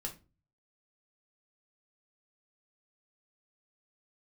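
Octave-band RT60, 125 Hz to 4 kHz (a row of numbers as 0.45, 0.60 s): 0.65, 0.45, 0.35, 0.30, 0.25, 0.25 s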